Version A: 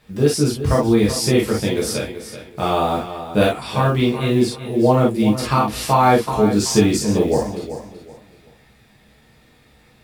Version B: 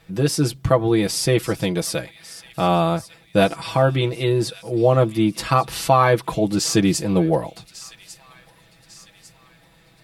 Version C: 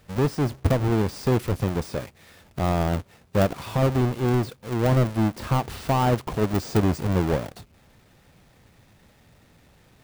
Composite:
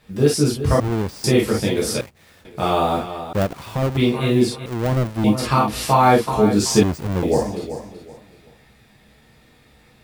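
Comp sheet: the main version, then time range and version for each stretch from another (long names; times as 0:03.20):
A
0:00.80–0:01.24: punch in from C
0:02.01–0:02.45: punch in from C
0:03.33–0:03.97: punch in from C
0:04.66–0:05.24: punch in from C
0:06.83–0:07.23: punch in from C
not used: B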